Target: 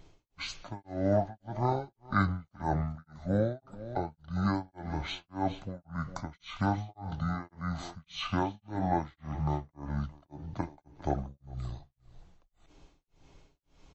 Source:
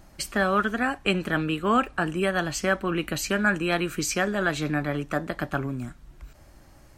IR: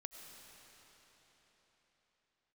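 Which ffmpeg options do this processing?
-af "aecho=1:1:201:0.15,tremolo=f=3.6:d=1,asetrate=22050,aresample=44100,volume=-3.5dB"

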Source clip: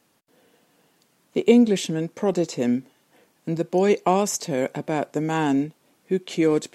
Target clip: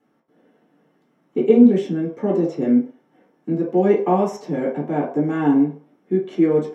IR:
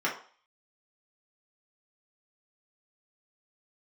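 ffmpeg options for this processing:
-filter_complex "[0:a]tiltshelf=frequency=1200:gain=8[link_01];[1:a]atrim=start_sample=2205[link_02];[link_01][link_02]afir=irnorm=-1:irlink=0,volume=-11.5dB"

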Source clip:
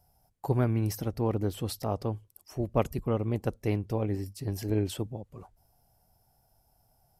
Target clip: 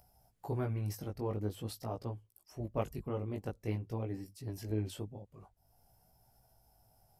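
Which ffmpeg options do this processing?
ffmpeg -i in.wav -af "acompressor=mode=upward:threshold=-49dB:ratio=2.5,flanger=delay=16.5:depth=3.7:speed=0.47,volume=-5.5dB" out.wav

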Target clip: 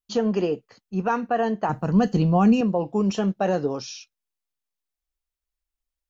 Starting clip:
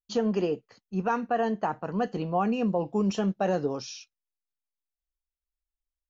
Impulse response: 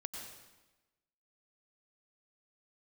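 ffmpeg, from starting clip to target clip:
-filter_complex "[0:a]asettb=1/sr,asplit=3[link_01][link_02][link_03];[link_01]atrim=end=1.694[link_04];[link_02]atrim=start=1.69:end=2.61,asetpts=PTS-STARTPTS,afade=type=in:duration=0.004:curve=qsin,afade=type=out:start_time=0.916:duration=0.004:curve=qsin,bass=frequency=250:gain=13,treble=frequency=4000:gain=11[link_05];[link_03]atrim=start=2.606[link_06];[link_04][link_05]acrossfade=duration=0.004:curve1=hsin:curve2=qsin[link_07];[link_07][link_06]acrossfade=duration=0.004:curve1=qsin:curve2=hsin,volume=3.5dB"

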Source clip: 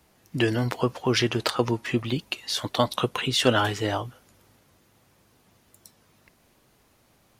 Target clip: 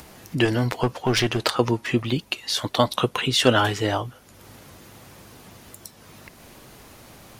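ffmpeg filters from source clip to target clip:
ffmpeg -i in.wav -filter_complex "[0:a]asplit=2[link_01][link_02];[link_02]acompressor=mode=upward:threshold=-27dB:ratio=2.5,volume=-2dB[link_03];[link_01][link_03]amix=inputs=2:normalize=0,asettb=1/sr,asplit=3[link_04][link_05][link_06];[link_04]atrim=end=0.454[link_07];[link_05]atrim=start=0.45:end=1.43,asetpts=PTS-STARTPTS,afade=type=in:duration=0.004:curve=qsin,afade=type=out:start_time=0.976:duration=0.004:curve=qsin,aeval=exprs='clip(val(0),-1,0.126)':channel_layout=same[link_08];[link_06]atrim=start=1.426[link_09];[link_07][link_08]acrossfade=duration=0.004:curve1=hsin:curve2=qsin[link_10];[link_10][link_09]acrossfade=duration=0.004:curve1=qsin:curve2=hsin,volume=-2dB" out.wav

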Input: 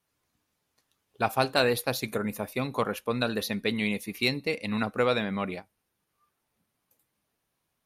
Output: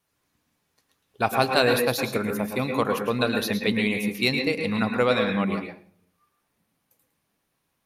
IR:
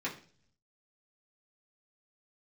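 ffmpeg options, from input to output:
-filter_complex "[0:a]asplit=2[link_01][link_02];[1:a]atrim=start_sample=2205,adelay=109[link_03];[link_02][link_03]afir=irnorm=-1:irlink=0,volume=-7.5dB[link_04];[link_01][link_04]amix=inputs=2:normalize=0,volume=3dB"

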